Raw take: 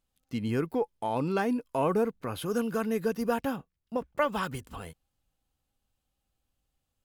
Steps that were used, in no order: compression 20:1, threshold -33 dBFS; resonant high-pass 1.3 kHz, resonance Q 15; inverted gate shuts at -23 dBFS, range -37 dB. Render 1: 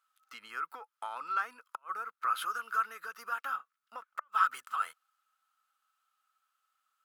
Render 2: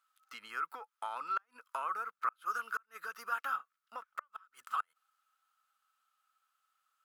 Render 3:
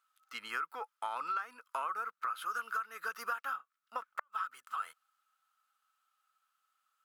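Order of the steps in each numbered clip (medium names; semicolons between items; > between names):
compression > inverted gate > resonant high-pass; compression > resonant high-pass > inverted gate; resonant high-pass > compression > inverted gate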